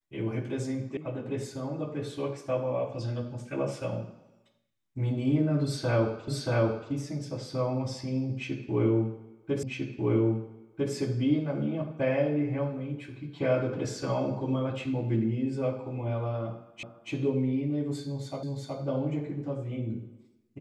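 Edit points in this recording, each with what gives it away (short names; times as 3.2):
0.97 sound cut off
6.28 repeat of the last 0.63 s
9.63 repeat of the last 1.3 s
16.83 repeat of the last 0.28 s
18.43 repeat of the last 0.37 s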